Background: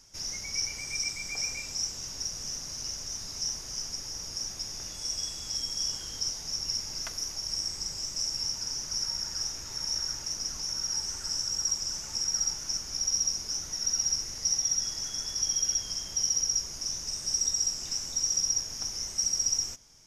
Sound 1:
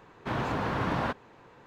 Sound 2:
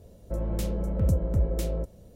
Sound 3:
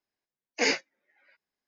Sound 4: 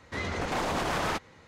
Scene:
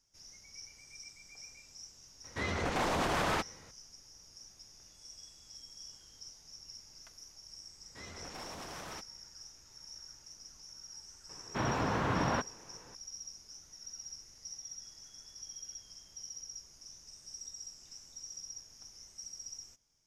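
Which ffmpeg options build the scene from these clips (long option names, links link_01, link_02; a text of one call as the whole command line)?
ffmpeg -i bed.wav -i cue0.wav -i cue1.wav -i cue2.wav -i cue3.wav -filter_complex "[4:a]asplit=2[link_01][link_02];[0:a]volume=-18.5dB[link_03];[link_02]highshelf=frequency=6200:gain=9[link_04];[link_01]atrim=end=1.47,asetpts=PTS-STARTPTS,volume=-2dB,afade=type=in:duration=0.004:curve=hsin,afade=type=out:start_time=1.466:duration=0.004:curve=hsin,adelay=2240[link_05];[link_04]atrim=end=1.47,asetpts=PTS-STARTPTS,volume=-17dB,afade=type=in:duration=0.004:curve=hsin,afade=type=out:start_time=1.466:duration=0.004:curve=hsin,adelay=7830[link_06];[1:a]atrim=end=1.66,asetpts=PTS-STARTPTS,volume=-2dB,afade=type=in:duration=0.004:curve=hsin,afade=type=out:start_time=1.656:duration=0.004:curve=hsin,adelay=11290[link_07];[link_03][link_05][link_06][link_07]amix=inputs=4:normalize=0" out.wav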